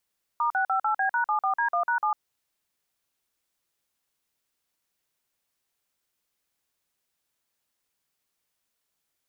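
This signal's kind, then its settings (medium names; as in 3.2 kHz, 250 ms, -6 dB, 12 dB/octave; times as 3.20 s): DTMF "*658B#74D1#7", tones 102 ms, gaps 46 ms, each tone -24.5 dBFS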